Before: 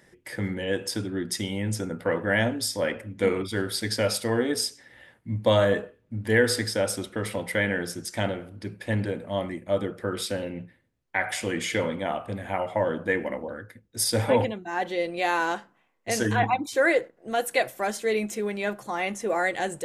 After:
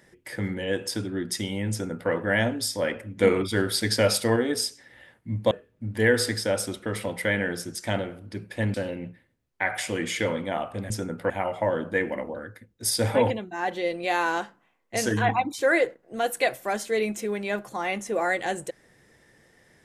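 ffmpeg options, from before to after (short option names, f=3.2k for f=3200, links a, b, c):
-filter_complex "[0:a]asplit=7[a][b][c][d][e][f][g];[a]atrim=end=3.172[h];[b]atrim=start=3.168:end=4.362,asetpts=PTS-STARTPTS,volume=3.5dB[i];[c]atrim=start=4.358:end=5.512[j];[d]atrim=start=5.808:end=9.042[k];[e]atrim=start=10.278:end=12.442[l];[f]atrim=start=1.708:end=2.112[m];[g]atrim=start=12.438[n];[h][i]acrossfade=d=0.004:c1=hsin:c2=hsin[o];[o][j]acrossfade=d=0.004:c1=hsin:c2=hsin[p];[p][k]acrossfade=d=0.004:c1=hsin:c2=hsin[q];[q][l]acrossfade=d=0.004:c1=hsin:c2=hsin[r];[r][m]acrossfade=d=0.004:c1=hsin:c2=hsin[s];[s][n]acrossfade=d=0.004:c1=hsin:c2=hsin"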